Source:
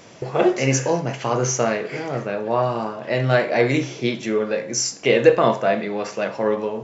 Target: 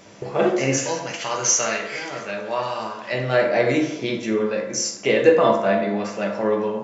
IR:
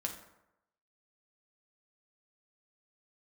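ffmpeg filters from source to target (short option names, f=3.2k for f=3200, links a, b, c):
-filter_complex "[0:a]asplit=3[a][b][c];[a]afade=t=out:st=0.77:d=0.02[d];[b]tiltshelf=f=1.2k:g=-9.5,afade=t=in:st=0.77:d=0.02,afade=t=out:st=3.12:d=0.02[e];[c]afade=t=in:st=3.12:d=0.02[f];[d][e][f]amix=inputs=3:normalize=0[g];[1:a]atrim=start_sample=2205[h];[g][h]afir=irnorm=-1:irlink=0,volume=-1.5dB"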